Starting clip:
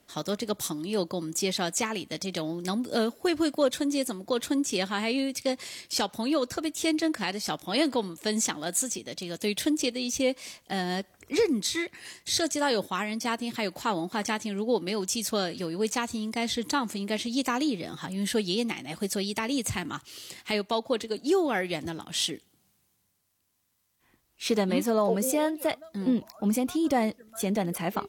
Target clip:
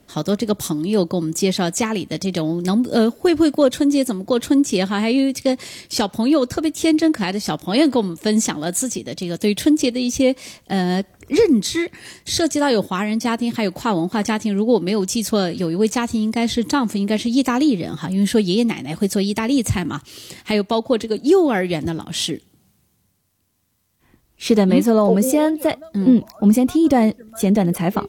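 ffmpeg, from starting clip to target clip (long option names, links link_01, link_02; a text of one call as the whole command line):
ffmpeg -i in.wav -af "lowshelf=frequency=430:gain=10,volume=5dB" out.wav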